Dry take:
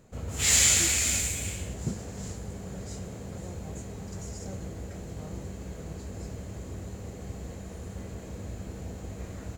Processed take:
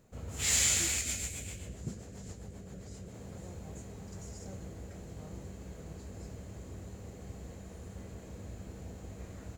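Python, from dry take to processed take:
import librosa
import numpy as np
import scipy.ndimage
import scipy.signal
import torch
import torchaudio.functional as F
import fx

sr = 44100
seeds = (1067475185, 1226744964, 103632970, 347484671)

y = fx.quant_dither(x, sr, seeds[0], bits=12, dither='none')
y = fx.rotary(y, sr, hz=7.5, at=(1.01, 3.14))
y = F.gain(torch.from_numpy(y), -6.5).numpy()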